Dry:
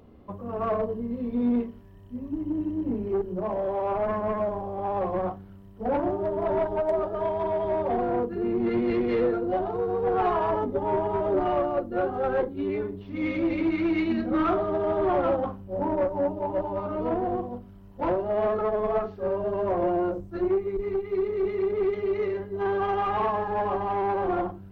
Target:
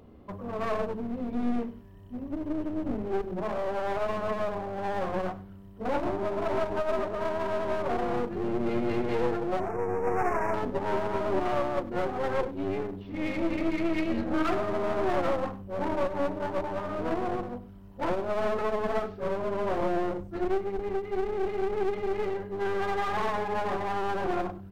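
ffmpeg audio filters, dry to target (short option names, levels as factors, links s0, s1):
-filter_complex "[0:a]aeval=exprs='clip(val(0),-1,0.015)':c=same,asettb=1/sr,asplit=3[s0][s1][s2];[s0]atrim=end=9.604[s3];[s1]atrim=start=9.6:end=10.54,asetpts=PTS-STARTPTS,afade=t=in:d=0.004:c=qsin,afade=t=out:st=0.936:d=0.004:c=qsin,asuperstop=centerf=3700:order=8:qfactor=1.2[s4];[s2]atrim=start=10.536[s5];[s3][s4]acrossfade=d=0.004:c1=hsin:c2=qsin[s6];[s6][s5]acrossfade=d=0.004:c1=qsin:c2=hsin,aecho=1:1:98:0.126"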